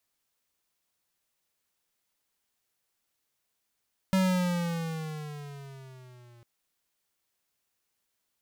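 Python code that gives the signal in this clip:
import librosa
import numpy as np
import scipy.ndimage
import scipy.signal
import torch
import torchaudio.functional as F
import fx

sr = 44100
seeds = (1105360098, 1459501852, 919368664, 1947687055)

y = fx.riser_tone(sr, length_s=2.3, level_db=-23.0, wave='square', hz=191.0, rise_st=-8.5, swell_db=-32)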